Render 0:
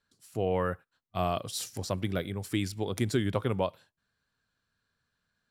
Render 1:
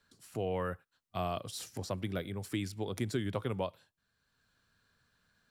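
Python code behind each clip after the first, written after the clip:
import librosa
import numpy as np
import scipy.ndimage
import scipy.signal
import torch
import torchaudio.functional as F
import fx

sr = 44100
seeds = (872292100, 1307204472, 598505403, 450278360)

y = fx.band_squash(x, sr, depth_pct=40)
y = y * librosa.db_to_amplitude(-5.5)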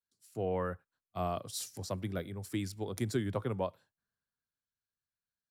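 y = fx.peak_eq(x, sr, hz=2900.0, db=-5.0, octaves=1.0)
y = fx.band_widen(y, sr, depth_pct=70)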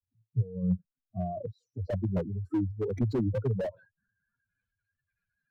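y = fx.spec_expand(x, sr, power=3.6)
y = fx.filter_sweep_lowpass(y, sr, from_hz=110.0, to_hz=2400.0, start_s=0.26, end_s=3.1, q=6.4)
y = fx.slew_limit(y, sr, full_power_hz=7.6)
y = y * librosa.db_to_amplitude(8.0)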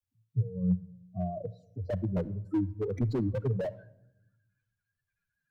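y = fx.room_shoebox(x, sr, seeds[0], volume_m3=2700.0, walls='furnished', distance_m=0.49)
y = y * librosa.db_to_amplitude(-1.0)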